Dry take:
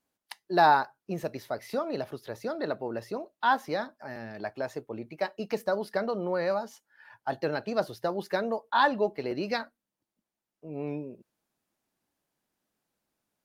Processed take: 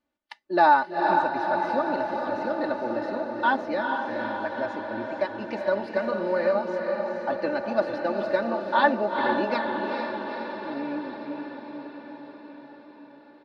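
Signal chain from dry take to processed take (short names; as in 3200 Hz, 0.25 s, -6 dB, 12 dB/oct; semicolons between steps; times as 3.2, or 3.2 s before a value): LPF 3300 Hz 12 dB/oct; comb 3.4 ms, depth 79%; diffused feedback echo 0.45 s, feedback 66%, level -4 dB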